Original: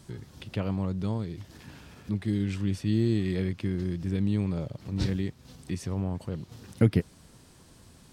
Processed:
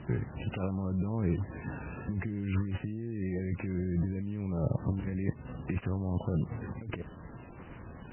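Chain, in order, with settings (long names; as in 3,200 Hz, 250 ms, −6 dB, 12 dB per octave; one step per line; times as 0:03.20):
gap after every zero crossing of 0.12 ms
compressor whose output falls as the input rises −35 dBFS, ratio −1
level +3 dB
MP3 8 kbit/s 12,000 Hz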